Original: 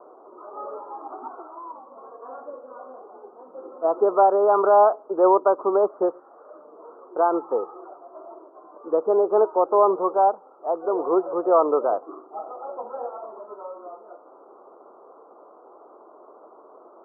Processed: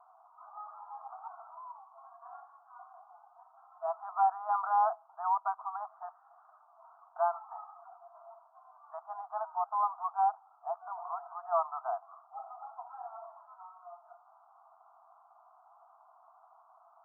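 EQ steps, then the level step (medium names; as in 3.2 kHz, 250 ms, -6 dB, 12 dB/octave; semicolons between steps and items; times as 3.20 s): brick-wall FIR high-pass 650 Hz; -8.5 dB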